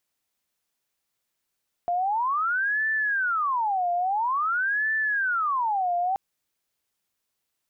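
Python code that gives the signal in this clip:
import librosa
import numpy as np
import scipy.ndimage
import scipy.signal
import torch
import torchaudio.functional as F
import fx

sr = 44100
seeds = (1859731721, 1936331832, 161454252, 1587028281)

y = fx.siren(sr, length_s=4.28, kind='wail', low_hz=699.0, high_hz=1760.0, per_s=0.49, wave='sine', level_db=-22.0)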